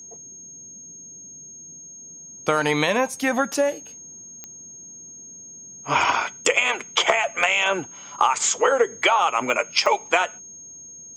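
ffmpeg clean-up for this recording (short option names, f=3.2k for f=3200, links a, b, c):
-af "adeclick=t=4,bandreject=f=6.5k:w=30"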